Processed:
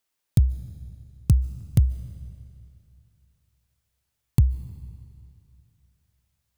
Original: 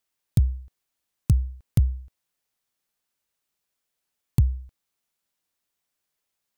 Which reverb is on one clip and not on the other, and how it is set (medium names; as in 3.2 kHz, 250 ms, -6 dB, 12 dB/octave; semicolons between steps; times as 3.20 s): algorithmic reverb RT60 2.6 s, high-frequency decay 0.95×, pre-delay 105 ms, DRR 16 dB; trim +1.5 dB